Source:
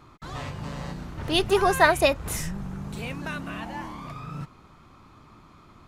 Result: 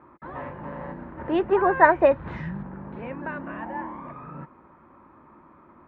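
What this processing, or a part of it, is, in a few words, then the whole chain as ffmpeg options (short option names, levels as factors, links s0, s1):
bass cabinet: -filter_complex "[0:a]highpass=60,equalizer=f=110:t=q:w=4:g=-10,equalizer=f=240:t=q:w=4:g=6,equalizer=f=340:t=q:w=4:g=8,equalizer=f=550:t=q:w=4:g=10,equalizer=f=940:t=q:w=4:g=10,equalizer=f=1700:t=q:w=4:g=7,lowpass=f=2100:w=0.5412,lowpass=f=2100:w=1.3066,asettb=1/sr,asplit=3[s0][s1][s2];[s0]atrim=end=2.114[s3];[s1]atrim=start=2.11:end=2.63,asetpts=PTS-STARTPTS,afade=t=in:d=0.004:c=qsin,afade=t=out:st=0.516:d=0.004:c=qsin,equalizer=f=125:t=o:w=1:g=11,equalizer=f=500:t=o:w=1:g=-5,equalizer=f=4000:t=o:w=1:g=11,equalizer=f=8000:t=o:w=1:g=4[s4];[s2]atrim=start=2.626[s5];[s3][s4]acrossfade=d=0.004:c1=hsin:c2=qsin[s6];[s6][s5]acrossfade=d=0.004:c1=qsin:c2=hsin,volume=0.596"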